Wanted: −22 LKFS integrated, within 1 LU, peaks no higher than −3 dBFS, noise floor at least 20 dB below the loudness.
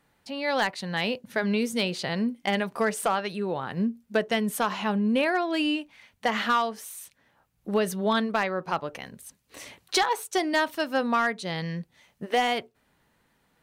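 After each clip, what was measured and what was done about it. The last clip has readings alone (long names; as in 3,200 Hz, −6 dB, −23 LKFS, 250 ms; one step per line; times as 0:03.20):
share of clipped samples 0.3%; peaks flattened at −16.0 dBFS; integrated loudness −27.0 LKFS; sample peak −16.0 dBFS; target loudness −22.0 LKFS
→ clipped peaks rebuilt −16 dBFS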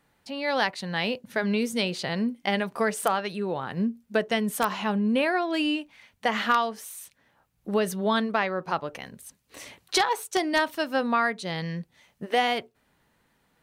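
share of clipped samples 0.0%; integrated loudness −27.0 LKFS; sample peak −7.0 dBFS; target loudness −22.0 LKFS
→ level +5 dB
brickwall limiter −3 dBFS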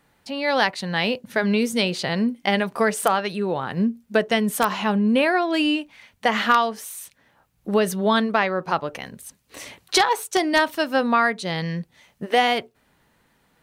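integrated loudness −22.0 LKFS; sample peak −3.0 dBFS; background noise floor −65 dBFS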